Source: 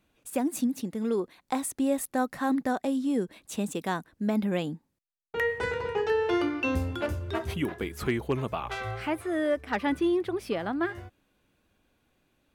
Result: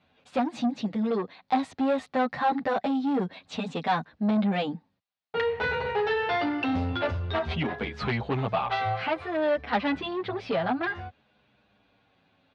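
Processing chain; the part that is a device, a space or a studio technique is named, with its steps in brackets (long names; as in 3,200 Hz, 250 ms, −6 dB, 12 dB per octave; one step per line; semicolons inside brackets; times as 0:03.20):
barber-pole flanger into a guitar amplifier (barber-pole flanger 8.8 ms −0.56 Hz; soft clipping −28.5 dBFS, distortion −13 dB; loudspeaker in its box 94–4,300 Hz, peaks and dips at 340 Hz −10 dB, 760 Hz +5 dB, 4,100 Hz +3 dB)
level +9 dB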